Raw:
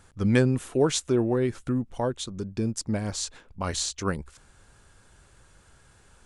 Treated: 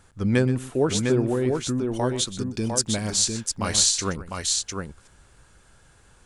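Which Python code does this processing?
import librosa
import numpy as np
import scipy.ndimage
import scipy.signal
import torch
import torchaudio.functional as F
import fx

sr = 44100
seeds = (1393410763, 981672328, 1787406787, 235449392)

y = fx.high_shelf(x, sr, hz=2100.0, db=11.5, at=(1.93, 4.06))
y = fx.echo_multitap(y, sr, ms=(125, 703), db=(-15.0, -4.5))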